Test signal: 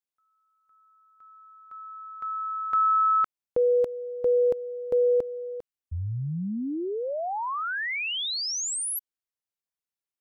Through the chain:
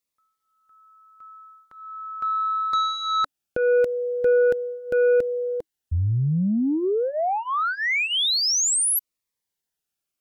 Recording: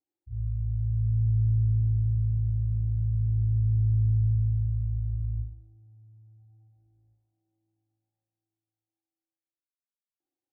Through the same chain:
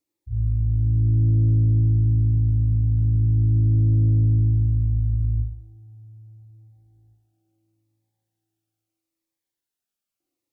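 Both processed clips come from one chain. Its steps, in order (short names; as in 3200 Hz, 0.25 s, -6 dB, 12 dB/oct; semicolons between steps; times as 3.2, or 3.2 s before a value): in parallel at -3.5 dB: sine folder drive 5 dB, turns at -17 dBFS; on the sum: cascading phaser falling 0.77 Hz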